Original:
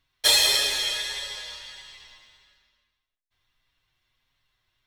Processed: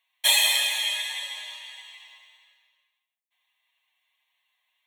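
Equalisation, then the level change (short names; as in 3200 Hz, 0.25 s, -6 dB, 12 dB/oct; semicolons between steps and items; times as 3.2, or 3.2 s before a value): HPF 840 Hz 12 dB/oct; bell 5900 Hz +2 dB; fixed phaser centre 1400 Hz, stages 6; +3.5 dB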